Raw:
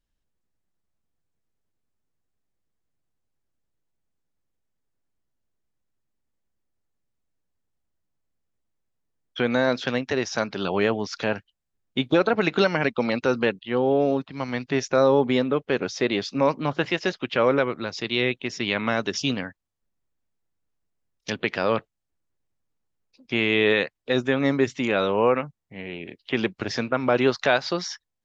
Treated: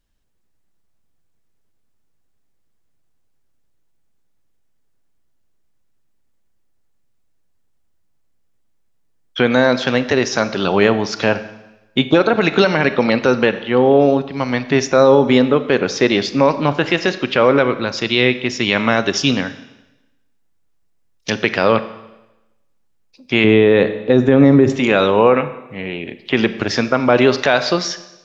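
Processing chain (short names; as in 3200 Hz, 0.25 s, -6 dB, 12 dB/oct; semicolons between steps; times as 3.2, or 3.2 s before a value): 23.44–24.7 tilt shelf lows +8 dB, about 1100 Hz; Schroeder reverb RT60 1 s, combs from 28 ms, DRR 12.5 dB; maximiser +10 dB; gain -1 dB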